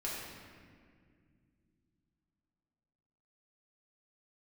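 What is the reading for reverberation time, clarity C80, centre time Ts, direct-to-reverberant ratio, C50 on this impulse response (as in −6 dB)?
2.1 s, 1.0 dB, 106 ms, −7.0 dB, −1.0 dB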